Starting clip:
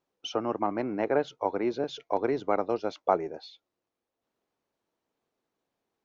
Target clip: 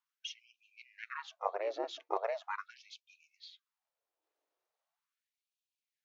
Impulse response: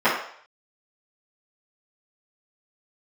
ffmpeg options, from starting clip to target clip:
-af "aeval=exprs='val(0)*sin(2*PI*210*n/s)':c=same,afftfilt=real='re*gte(b*sr/1024,260*pow(2400/260,0.5+0.5*sin(2*PI*0.4*pts/sr)))':imag='im*gte(b*sr/1024,260*pow(2400/260,0.5+0.5*sin(2*PI*0.4*pts/sr)))':win_size=1024:overlap=0.75,volume=-2dB"

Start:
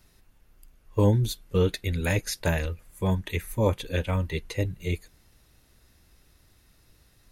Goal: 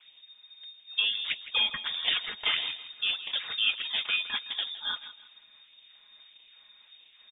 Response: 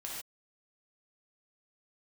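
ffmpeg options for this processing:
-filter_complex "[0:a]equalizer=f=1.2k:t=o:w=0.3:g=9.5,bandreject=f=620:w=12,aecho=1:1:4.9:0.77,acrossover=split=500|1100[a][b][c];[a]acompressor=threshold=-33dB:ratio=6[d];[d][b][c]amix=inputs=3:normalize=0,acrusher=samples=11:mix=1:aa=0.000001:lfo=1:lforange=17.6:lforate=1.6,asplit=2[e][f];[f]aecho=0:1:163|326|489:0.2|0.0599|0.018[g];[e][g]amix=inputs=2:normalize=0,lowpass=f=3.1k:t=q:w=0.5098,lowpass=f=3.1k:t=q:w=0.6013,lowpass=f=3.1k:t=q:w=0.9,lowpass=f=3.1k:t=q:w=2.563,afreqshift=-3700"

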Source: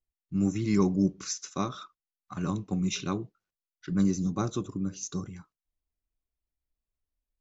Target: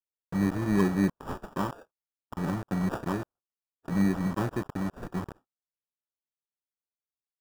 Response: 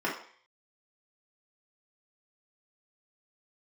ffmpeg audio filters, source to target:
-filter_complex "[0:a]acrossover=split=2800[a][b];[a]acrusher=bits=5:mix=0:aa=0.000001[c];[c][b]amix=inputs=2:normalize=0,agate=range=-17dB:threshold=-55dB:ratio=16:detection=peak,acrusher=samples=21:mix=1:aa=0.000001,highshelf=f=2k:t=q:w=1.5:g=-7.5"

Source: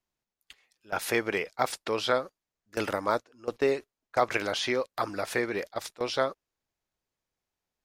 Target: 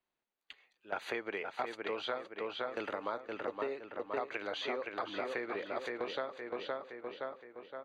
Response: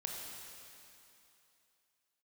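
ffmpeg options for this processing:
-filter_complex "[0:a]asplit=2[a][b];[b]adelay=517,lowpass=f=3.8k:p=1,volume=-6dB,asplit=2[c][d];[d]adelay=517,lowpass=f=3.8k:p=1,volume=0.47,asplit=2[e][f];[f]adelay=517,lowpass=f=3.8k:p=1,volume=0.47,asplit=2[g][h];[h]adelay=517,lowpass=f=3.8k:p=1,volume=0.47,asplit=2[i][j];[j]adelay=517,lowpass=f=3.8k:p=1,volume=0.47,asplit=2[k][l];[l]adelay=517,lowpass=f=3.8k:p=1,volume=0.47[m];[c][e][g][i][k][m]amix=inputs=6:normalize=0[n];[a][n]amix=inputs=2:normalize=0,acompressor=threshold=-35dB:ratio=6,asuperstop=centerf=5300:order=8:qfactor=5.7,acrossover=split=230 4500:gain=0.224 1 0.0631[o][p][q];[o][p][q]amix=inputs=3:normalize=0,volume=1dB"

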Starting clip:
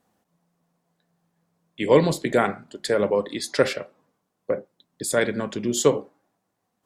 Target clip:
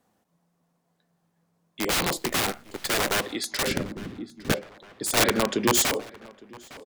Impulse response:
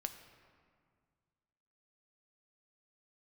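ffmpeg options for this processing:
-filter_complex "[0:a]acrossover=split=220[a][b];[a]acompressor=threshold=-45dB:ratio=10[c];[c][b]amix=inputs=2:normalize=0,aeval=exprs='(mod(8.91*val(0)+1,2)-1)/8.91':c=same,asplit=2[d][e];[e]adelay=858,lowpass=f=3.7k:p=1,volume=-17dB,asplit=2[f][g];[g]adelay=858,lowpass=f=3.7k:p=1,volume=0.51,asplit=2[h][i];[i]adelay=858,lowpass=f=3.7k:p=1,volume=0.51,asplit=2[j][k];[k]adelay=858,lowpass=f=3.7k:p=1,volume=0.51[l];[f][h][j][l]amix=inputs=4:normalize=0[m];[d][m]amix=inputs=2:normalize=0,asettb=1/sr,asplit=3[n][o][p];[n]atrim=end=2.174[q];[o]atrim=start=2.17:end=3.17,asetpts=PTS-STARTPTS,afade=t=in:d=0.004:c=qsin,afade=t=out:st=0.996:d=0.004:c=qsin,acrusher=bits=6:dc=4:mix=0:aa=0.000001[r];[p]atrim=start=3.166[s];[q][r]acrossfade=d=0.004:c1=hsin:c2=qsin[t];[t][s]acrossfade=d=0.004:c1=qsin:c2=hsin,asettb=1/sr,asplit=3[u][v][w];[u]atrim=end=3.674[x];[v]atrim=start=3.67:end=4.52,asetpts=PTS-STARTPTS,afade=t=in:d=0.004:c=qsin,afade=t=out:st=0.846:d=0.004:c=qsin,lowshelf=f=400:t=q:w=1.5:g=13.5[y];[w]atrim=start=4.516[z];[x][y]acrossfade=d=0.004:c1=hsin:c2=qsin[aa];[aa][z]acrossfade=d=0.004:c1=qsin:c2=hsin,asettb=1/sr,asplit=3[ab][ac][ad];[ab]atrim=end=5.174[ae];[ac]atrim=start=5.17:end=5.85,asetpts=PTS-STARTPTS,afade=t=in:d=0.004:c=qsin,afade=t=out:st=0.676:d=0.004:c=qsin,acontrast=46[af];[ad]atrim=start=5.846[ag];[ae][af]acrossfade=d=0.004:c1=hsin:c2=qsin[ah];[ah][ag]acrossfade=d=0.004:c1=qsin:c2=hsin"

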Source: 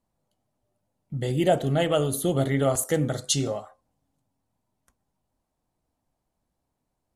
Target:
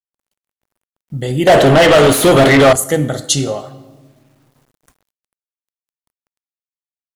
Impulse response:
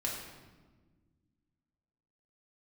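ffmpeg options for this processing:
-filter_complex "[0:a]asplit=2[a][b];[1:a]atrim=start_sample=2205,lowshelf=f=300:g=-10.5[c];[b][c]afir=irnorm=-1:irlink=0,volume=-11dB[d];[a][d]amix=inputs=2:normalize=0,asettb=1/sr,asplit=3[e][f][g];[e]atrim=end=1.474[h];[f]atrim=start=1.47:end=2.73,asetpts=PTS-STARTPTS,afade=t=in:d=0.004:c=qsin,afade=t=out:st=1.256:d=0.004:c=qsin,asplit=2[i][j];[j]highpass=f=720:p=1,volume=30dB,asoftclip=type=tanh:threshold=-8dB[k];[i][k]amix=inputs=2:normalize=0,lowpass=f=3k:p=1,volume=-6dB[l];[g]atrim=start=2.726[m];[h][l]acrossfade=d=0.004:c1=hsin:c2=qsin[n];[n][m]acrossfade=d=0.004:c1=qsin:c2=hsin,acrusher=bits=10:mix=0:aa=0.000001,dynaudnorm=f=130:g=13:m=9dB,volume=1dB"

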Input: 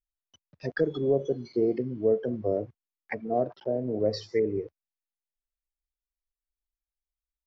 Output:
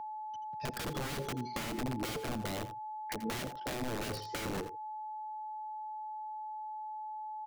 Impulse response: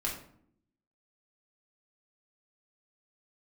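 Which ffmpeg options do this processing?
-filter_complex "[0:a]aeval=exprs='(mod(21.1*val(0)+1,2)-1)/21.1':c=same,aecho=1:1:83:0.2,aeval=exprs='val(0)+0.0112*sin(2*PI*860*n/s)':c=same,acrossover=split=440[a][b];[b]acompressor=threshold=-38dB:ratio=6[c];[a][c]amix=inputs=2:normalize=0"

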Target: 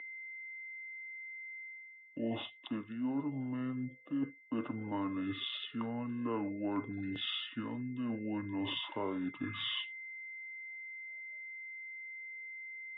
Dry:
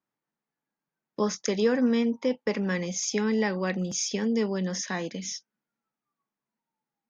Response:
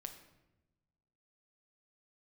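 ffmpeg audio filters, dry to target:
-filter_complex "[0:a]aeval=exprs='val(0)+0.00891*sin(2*PI*3800*n/s)':c=same,equalizer=f=125:t=o:w=1:g=-9,equalizer=f=500:t=o:w=1:g=11,equalizer=f=2k:t=o:w=1:g=-4,equalizer=f=4k:t=o:w=1:g=-7,areverse,acompressor=threshold=-34dB:ratio=5,areverse,asetrate=24123,aresample=44100,acrossover=split=360 3300:gain=0.2 1 0.0708[a][b][c];[a][b][c]amix=inputs=3:normalize=0,volume=6dB"

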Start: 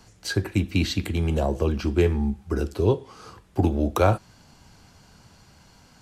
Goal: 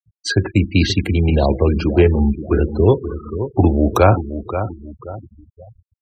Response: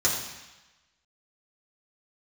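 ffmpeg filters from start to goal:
-af "aecho=1:1:529|1058|1587|2116:0.282|0.107|0.0407|0.0155,acontrast=49,afftfilt=real='re*gte(hypot(re,im),0.0501)':imag='im*gte(hypot(re,im),0.0501)':win_size=1024:overlap=0.75,volume=2.5dB"

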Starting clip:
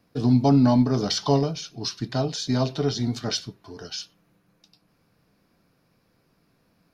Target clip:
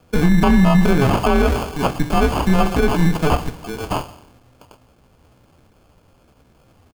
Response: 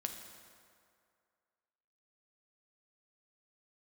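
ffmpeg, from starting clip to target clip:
-filter_complex "[0:a]asplit=2[a][b];[b]adelay=210,lowpass=f=1.8k:p=1,volume=-23dB,asplit=2[c][d];[d]adelay=210,lowpass=f=1.8k:p=1,volume=0.31[e];[a][c][e]amix=inputs=3:normalize=0,afreqshift=-110,asetrate=58866,aresample=44100,atempo=0.749154,asplit=2[f][g];[1:a]atrim=start_sample=2205,asetrate=66150,aresample=44100[h];[g][h]afir=irnorm=-1:irlink=0,volume=3.5dB[i];[f][i]amix=inputs=2:normalize=0,acrusher=samples=23:mix=1:aa=0.000001,acrossover=split=2900[j][k];[k]acompressor=threshold=-35dB:ratio=4:attack=1:release=60[l];[j][l]amix=inputs=2:normalize=0,alimiter=level_in=12dB:limit=-1dB:release=50:level=0:latency=1,volume=-5dB"

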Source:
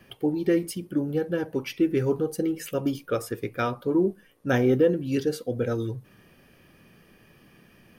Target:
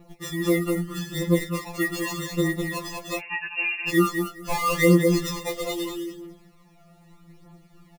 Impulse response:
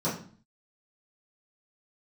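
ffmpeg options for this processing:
-filter_complex "[0:a]asettb=1/sr,asplit=3[a][b][c];[a]atrim=end=5.064[d];[b]atrim=start=5.06:end=5.57,asetpts=PTS-STARTPTS,afade=t=in:d=0.004:c=qsin,afade=t=out:st=0.506:d=0.004:c=qsin,equalizer=f=1.4k:w=0.51:g=10.5[e];[c]atrim=start=5.566[f];[d][e]acrossfade=d=0.004:c1=hsin:c2=qsin[g];[g][f]acrossfade=d=0.004:c1=qsin:c2=hsin,asplit=2[h][i];[i]adelay=204,lowpass=f=1.1k:p=1,volume=-4dB,asplit=2[j][k];[k]adelay=204,lowpass=f=1.1k:p=1,volume=0.18,asplit=2[l][m];[m]adelay=204,lowpass=f=1.1k:p=1,volume=0.18[n];[h][j][l][n]amix=inputs=4:normalize=0,asettb=1/sr,asplit=3[o][p][q];[o]atrim=end=0.844[r];[p]atrim=start=0.84:end=1.47,asetpts=PTS-STARTPTS,afade=t=in:d=0.004:c=qsin,afade=t=out:st=0.626:d=0.004:c=qsin,aeval=exprs='val(0)+0.0178*(sin(2*PI*50*n/s)+sin(2*PI*2*50*n/s)/2+sin(2*PI*3*50*n/s)/3+sin(2*PI*4*50*n/s)/4+sin(2*PI*5*50*n/s)/5)':c=same[s];[q]atrim=start=1.466[t];[r][s]acrossfade=d=0.004:c1=hsin:c2=qsin[u];[u][t]acrossfade=d=0.004:c1=qsin:c2=hsin,acrusher=samples=28:mix=1:aa=0.000001,aphaser=in_gain=1:out_gain=1:delay=1.6:decay=0.59:speed=0.8:type=triangular,asettb=1/sr,asplit=3[v][w][x];[v]atrim=end=3.194[y];[w]atrim=start=3.19:end=3.89,asetpts=PTS-STARTPTS,afade=t=in:d=0.004:c=qsin,afade=t=out:st=0.696:d=0.004:c=qsin,lowpass=f=2.5k:t=q:w=0.5098,lowpass=f=2.5k:t=q:w=0.6013,lowpass=f=2.5k:t=q:w=0.9,lowpass=f=2.5k:t=q:w=2.563,afreqshift=-2900[z];[x]atrim=start=3.886[aa];[y][z]acrossfade=d=0.004:c1=hsin:c2=qsin[ab];[ab][aa]acrossfade=d=0.004:c1=qsin:c2=hsin,afftfilt=real='re*2.83*eq(mod(b,8),0)':imag='im*2.83*eq(mod(b,8),0)':win_size=2048:overlap=0.75"

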